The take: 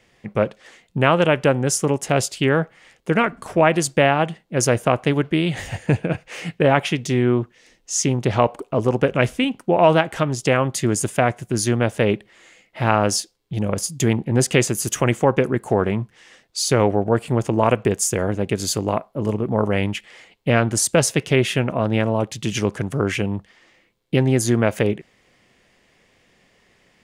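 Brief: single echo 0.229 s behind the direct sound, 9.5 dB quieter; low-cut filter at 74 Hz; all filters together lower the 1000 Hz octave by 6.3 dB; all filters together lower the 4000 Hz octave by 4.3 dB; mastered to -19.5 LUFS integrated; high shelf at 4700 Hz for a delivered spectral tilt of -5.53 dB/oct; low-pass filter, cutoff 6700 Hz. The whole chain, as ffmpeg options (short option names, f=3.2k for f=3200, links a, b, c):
-af "highpass=74,lowpass=6.7k,equalizer=f=1k:t=o:g=-9,equalizer=f=4k:t=o:g=-7,highshelf=f=4.7k:g=3.5,aecho=1:1:229:0.335,volume=2.5dB"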